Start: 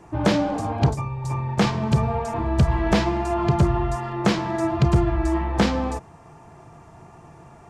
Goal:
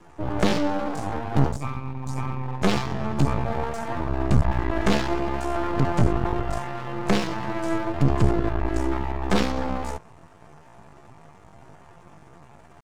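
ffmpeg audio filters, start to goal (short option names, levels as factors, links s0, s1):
-af "aeval=exprs='max(val(0),0)':c=same,atempo=0.6,volume=1.19"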